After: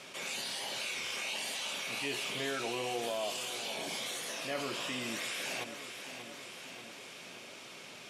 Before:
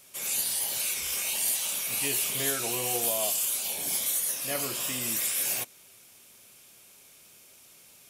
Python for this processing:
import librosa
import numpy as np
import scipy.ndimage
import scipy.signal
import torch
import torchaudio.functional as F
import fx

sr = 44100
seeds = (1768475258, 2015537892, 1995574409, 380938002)

p1 = fx.bandpass_edges(x, sr, low_hz=170.0, high_hz=3700.0)
p2 = p1 + fx.echo_feedback(p1, sr, ms=587, feedback_pct=51, wet_db=-16.0, dry=0)
p3 = fx.env_flatten(p2, sr, amount_pct=50)
y = p3 * 10.0 ** (-3.5 / 20.0)